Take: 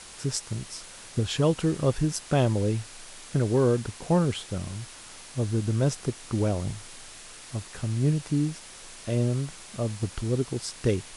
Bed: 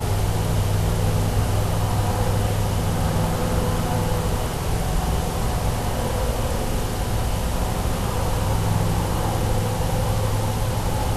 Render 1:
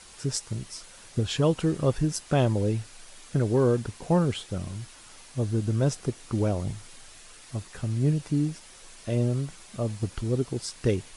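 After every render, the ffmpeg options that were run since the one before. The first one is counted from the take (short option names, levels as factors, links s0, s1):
-af "afftdn=nr=6:nf=-46"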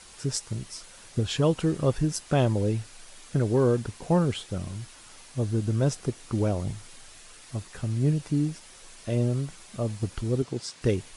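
-filter_complex "[0:a]asettb=1/sr,asplit=3[s0][s1][s2];[s0]atrim=end=10.424[s3];[s1]atrim=start=10.42:end=10.82,asetpts=PTS-STARTPTS,afade=t=in:d=0.004:c=qsin,afade=t=out:st=0.396:d=0.004:c=qsin,highpass=110,lowpass=7600[s4];[s2]atrim=start=10.816[s5];[s3][s4]acrossfade=d=0.004:c1=hsin:c2=qsin[s6];[s6][s5]acrossfade=d=0.004:c1=qsin:c2=hsin"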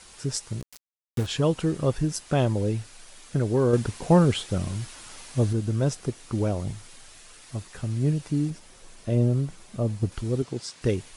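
-filter_complex "[0:a]asplit=3[s0][s1][s2];[s0]afade=t=out:st=0.6:d=0.02[s3];[s1]aeval=exprs='val(0)*gte(abs(val(0)),0.0282)':c=same,afade=t=in:st=0.6:d=0.02,afade=t=out:st=1.25:d=0.02[s4];[s2]afade=t=in:st=1.25:d=0.02[s5];[s3][s4][s5]amix=inputs=3:normalize=0,asettb=1/sr,asplit=3[s6][s7][s8];[s6]atrim=end=3.734[s9];[s7]atrim=start=3.73:end=5.53,asetpts=PTS-STARTPTS,afade=t=in:d=0.004:c=qsin,afade=t=out:st=1.796:d=0.004:c=qsin,acontrast=31[s10];[s8]atrim=start=5.526[s11];[s9][s10]acrossfade=d=0.004:c1=hsin:c2=qsin[s12];[s12][s11]acrossfade=d=0.004:c1=qsin:c2=hsin,asettb=1/sr,asplit=3[s13][s14][s15];[s13]atrim=end=8.504[s16];[s14]atrim=start=8.5:end=10.12,asetpts=PTS-STARTPTS,afade=t=in:d=0.004:c=qsin,afade=t=out:st=1.616:d=0.004:c=qsin,tiltshelf=f=790:g=4[s17];[s15]atrim=start=10.116[s18];[s16][s17]acrossfade=d=0.004:c1=hsin:c2=qsin[s19];[s19][s18]acrossfade=d=0.004:c1=qsin:c2=hsin"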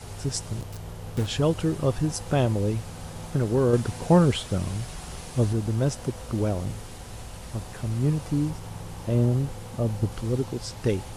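-filter_complex "[1:a]volume=0.141[s0];[0:a][s0]amix=inputs=2:normalize=0"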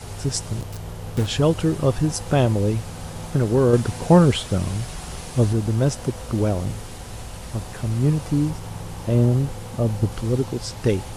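-af "volume=1.68"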